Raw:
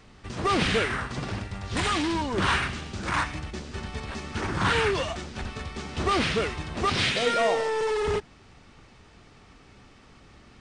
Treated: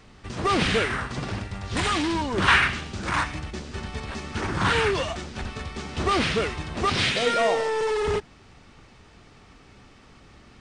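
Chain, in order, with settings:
0:02.47–0:02.90: dynamic equaliser 2,000 Hz, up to +8 dB, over −39 dBFS, Q 0.82
level +1.5 dB

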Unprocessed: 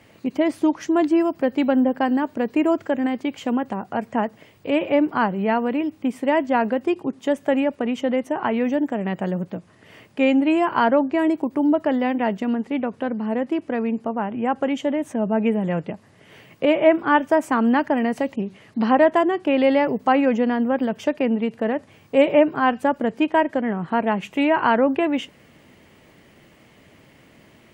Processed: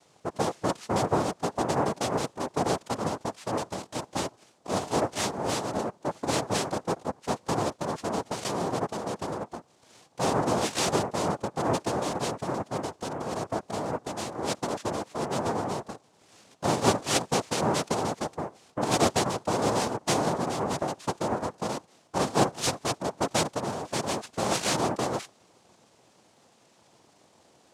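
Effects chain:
cochlear-implant simulation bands 2
0:22.18–0:22.67: multiband upward and downward expander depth 100%
level −8.5 dB

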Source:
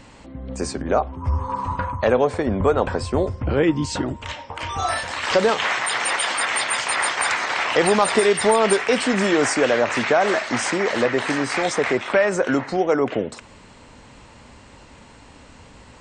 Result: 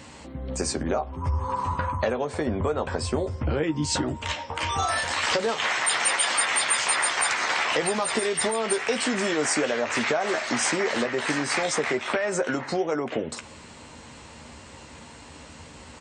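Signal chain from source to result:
downward compressor, threshold −23 dBFS, peak gain reduction 11.5 dB
high-pass filter 57 Hz
high-shelf EQ 4,600 Hz +6.5 dB
double-tracking delay 13 ms −7.5 dB

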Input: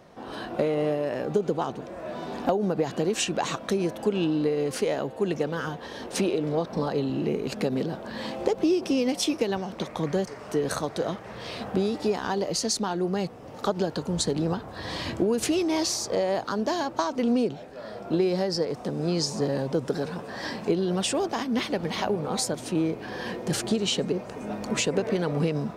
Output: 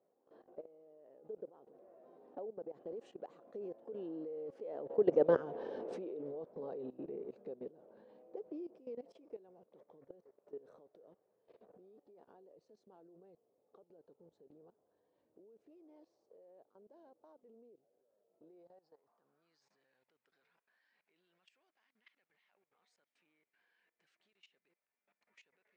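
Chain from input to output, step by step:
source passing by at 0:05.40, 15 m/s, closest 2.9 metres
band-pass filter sweep 470 Hz → 2,100 Hz, 0:18.40–0:19.78
output level in coarse steps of 18 dB
level +11 dB

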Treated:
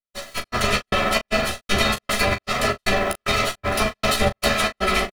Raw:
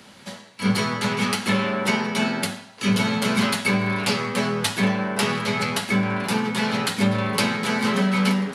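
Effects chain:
lower of the sound and its delayed copy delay 3 ms
comb filter 1.6 ms, depth 63%
in parallel at −1 dB: brickwall limiter −15.5 dBFS, peak gain reduction 9 dB
on the sum: bit reduction 8 bits
gate pattern "...xxxxx" 185 BPM −60 dB
time stretch by overlap-add 0.6×, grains 93 ms
on a send: ambience of single reflections 14 ms −5 dB, 39 ms −11 dB

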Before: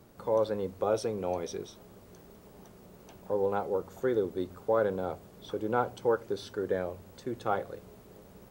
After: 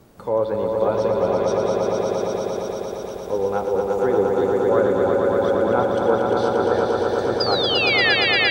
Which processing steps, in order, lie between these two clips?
sound drawn into the spectrogram fall, 0:07.40–0:08.15, 1,600–5,000 Hz −25 dBFS
treble cut that deepens with the level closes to 2,800 Hz, closed at −23.5 dBFS
echo that builds up and dies away 116 ms, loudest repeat 5, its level −4 dB
level +6 dB

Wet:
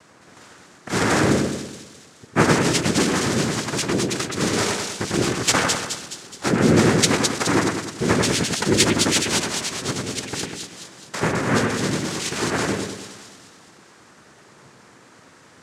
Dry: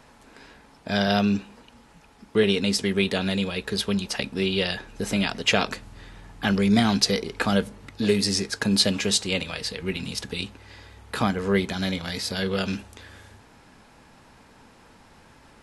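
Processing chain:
cochlear-implant simulation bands 3
echo with a time of its own for lows and highs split 2,900 Hz, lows 99 ms, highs 211 ms, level −3.5 dB
level +2 dB

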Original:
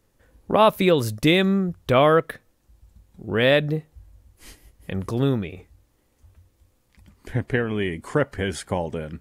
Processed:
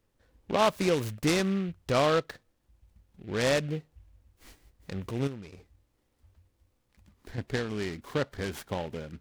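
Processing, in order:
0:05.27–0:07.38: downward compressor 3 to 1, threshold −31 dBFS, peak gain reduction 10.5 dB
short delay modulated by noise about 2,100 Hz, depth 0.054 ms
level −8 dB

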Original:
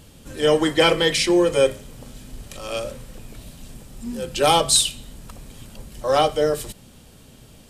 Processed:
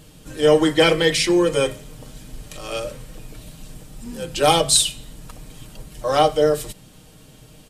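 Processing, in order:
comb filter 6.5 ms, depth 48%

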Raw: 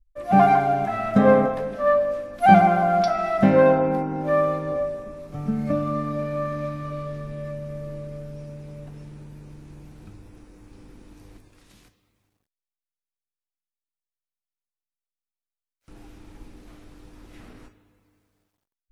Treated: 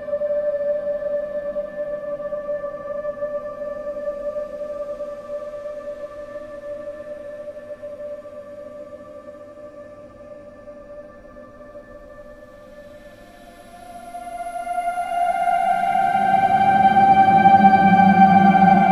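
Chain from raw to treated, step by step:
extreme stretch with random phases 35×, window 0.10 s, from 0:02.00
level −3 dB

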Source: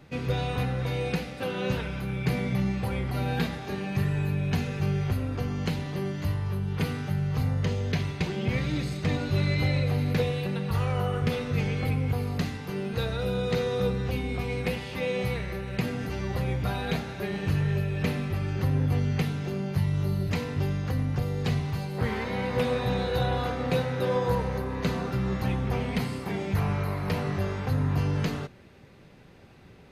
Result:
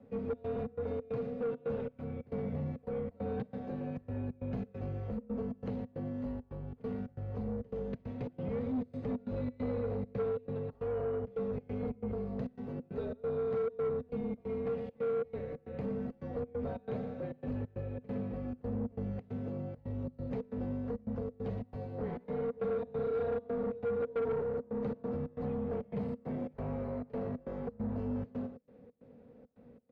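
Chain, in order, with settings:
on a send: single-tap delay 116 ms −11.5 dB
on the sum: gate pattern "xxx.xx.xx.x" 136 BPM −24 dB
pair of resonant band-passes 390 Hz, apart 0.86 octaves
in parallel at 0 dB: brickwall limiter −33 dBFS, peak gain reduction 11.5 dB
on the sum: frequency shifter −44 Hz
soft clipping −28.5 dBFS, distortion −15 dB

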